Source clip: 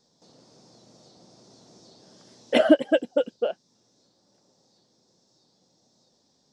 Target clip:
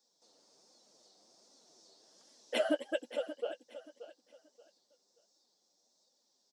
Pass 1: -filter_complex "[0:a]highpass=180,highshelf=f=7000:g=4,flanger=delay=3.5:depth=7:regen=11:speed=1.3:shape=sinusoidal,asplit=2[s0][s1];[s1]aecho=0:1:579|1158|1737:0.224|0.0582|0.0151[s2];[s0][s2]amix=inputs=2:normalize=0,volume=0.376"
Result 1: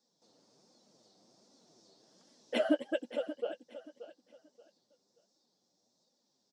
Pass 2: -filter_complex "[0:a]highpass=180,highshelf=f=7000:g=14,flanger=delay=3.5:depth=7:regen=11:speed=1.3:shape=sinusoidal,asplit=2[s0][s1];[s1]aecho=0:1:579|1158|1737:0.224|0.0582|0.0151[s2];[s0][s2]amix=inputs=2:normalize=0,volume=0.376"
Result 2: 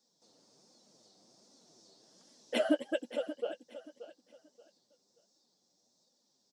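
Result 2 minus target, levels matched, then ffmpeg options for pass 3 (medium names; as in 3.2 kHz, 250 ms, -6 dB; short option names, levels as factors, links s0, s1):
250 Hz band +3.5 dB
-filter_complex "[0:a]highpass=380,highshelf=f=7000:g=14,flanger=delay=3.5:depth=7:regen=11:speed=1.3:shape=sinusoidal,asplit=2[s0][s1];[s1]aecho=0:1:579|1158|1737:0.224|0.0582|0.0151[s2];[s0][s2]amix=inputs=2:normalize=0,volume=0.376"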